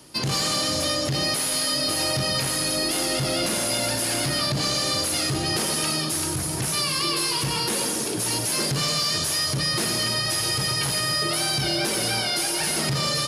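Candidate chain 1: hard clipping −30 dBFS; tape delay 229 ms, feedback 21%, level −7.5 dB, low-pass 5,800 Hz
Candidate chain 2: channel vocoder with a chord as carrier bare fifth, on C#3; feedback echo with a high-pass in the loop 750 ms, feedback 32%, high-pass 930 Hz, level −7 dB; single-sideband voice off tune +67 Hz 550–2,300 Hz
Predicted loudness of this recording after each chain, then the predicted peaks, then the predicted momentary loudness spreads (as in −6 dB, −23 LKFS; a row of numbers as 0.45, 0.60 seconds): −28.5, −35.0 LKFS; −26.0, −20.5 dBFS; 1, 5 LU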